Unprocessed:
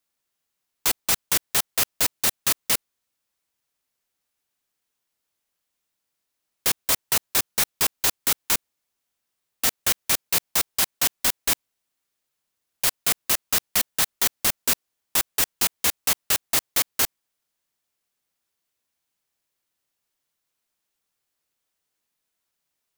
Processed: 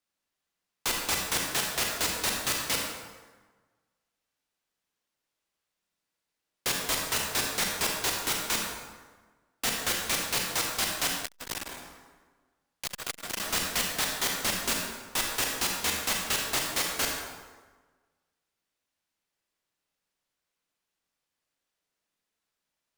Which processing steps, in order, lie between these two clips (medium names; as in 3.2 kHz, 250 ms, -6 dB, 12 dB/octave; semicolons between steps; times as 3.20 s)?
treble shelf 9.6 kHz -11 dB; hum notches 50/100/150/200 Hz; reverberation RT60 1.4 s, pre-delay 28 ms, DRR 0 dB; 11.20–13.40 s: transformer saturation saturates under 2.4 kHz; trim -3.5 dB